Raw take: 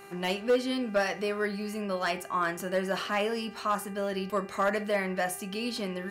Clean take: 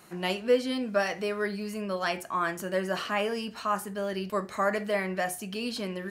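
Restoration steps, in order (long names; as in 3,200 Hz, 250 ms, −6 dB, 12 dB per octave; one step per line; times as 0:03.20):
clipped peaks rebuilt −19 dBFS
hum removal 396.7 Hz, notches 7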